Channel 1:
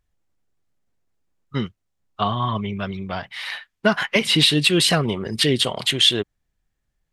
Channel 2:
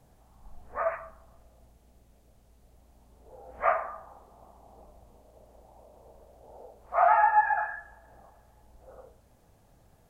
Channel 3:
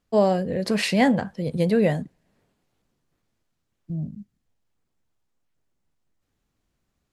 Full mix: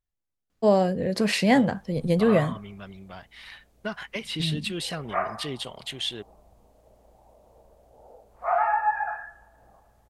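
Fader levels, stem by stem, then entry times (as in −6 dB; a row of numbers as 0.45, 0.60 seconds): −14.5, −2.0, −0.5 decibels; 0.00, 1.50, 0.50 seconds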